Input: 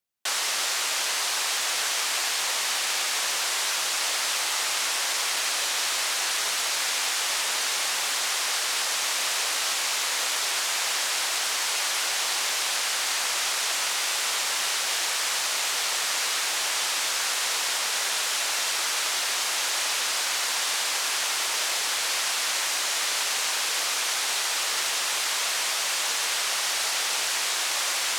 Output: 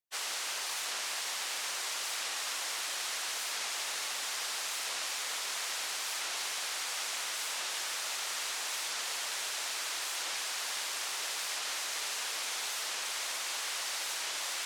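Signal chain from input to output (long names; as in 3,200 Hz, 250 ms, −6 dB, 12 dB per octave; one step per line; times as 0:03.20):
time stretch by phase vocoder 0.52×
wow of a warped record 45 rpm, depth 160 cents
level −6.5 dB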